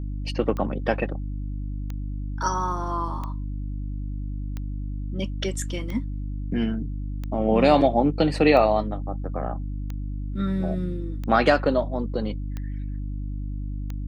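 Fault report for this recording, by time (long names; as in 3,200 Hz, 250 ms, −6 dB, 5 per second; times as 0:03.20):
mains hum 50 Hz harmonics 6 −30 dBFS
scratch tick 45 rpm −20 dBFS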